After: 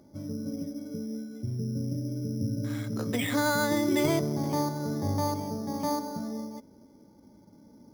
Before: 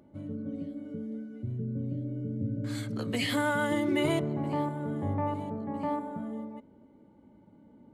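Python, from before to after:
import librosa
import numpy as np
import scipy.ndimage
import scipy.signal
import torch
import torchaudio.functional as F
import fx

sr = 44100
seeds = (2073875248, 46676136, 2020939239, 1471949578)

y = np.repeat(scipy.signal.resample_poly(x, 1, 8), 8)[:len(x)]
y = F.gain(torch.from_numpy(y), 2.0).numpy()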